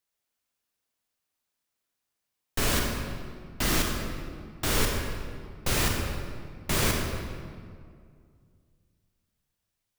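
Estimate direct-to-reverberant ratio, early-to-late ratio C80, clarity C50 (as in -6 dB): 0.5 dB, 3.5 dB, 2.0 dB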